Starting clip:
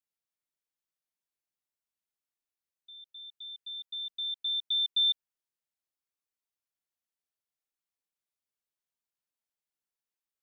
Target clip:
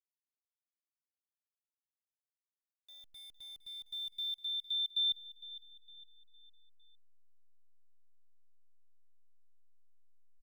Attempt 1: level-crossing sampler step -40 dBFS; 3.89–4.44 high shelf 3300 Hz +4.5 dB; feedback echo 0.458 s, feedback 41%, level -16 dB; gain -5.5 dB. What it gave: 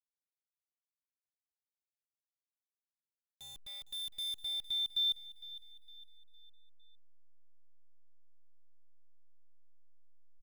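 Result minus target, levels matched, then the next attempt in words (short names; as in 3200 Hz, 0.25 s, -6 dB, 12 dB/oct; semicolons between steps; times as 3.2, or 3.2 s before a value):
level-crossing sampler: distortion +7 dB
level-crossing sampler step -50 dBFS; 3.89–4.44 high shelf 3300 Hz +4.5 dB; feedback echo 0.458 s, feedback 41%, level -16 dB; gain -5.5 dB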